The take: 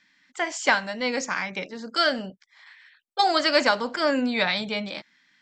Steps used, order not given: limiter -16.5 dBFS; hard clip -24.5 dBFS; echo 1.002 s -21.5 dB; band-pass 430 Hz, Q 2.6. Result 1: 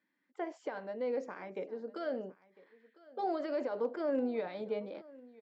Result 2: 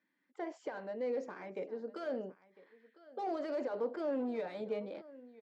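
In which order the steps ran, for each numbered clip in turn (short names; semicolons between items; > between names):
limiter > band-pass > hard clip > echo; limiter > echo > hard clip > band-pass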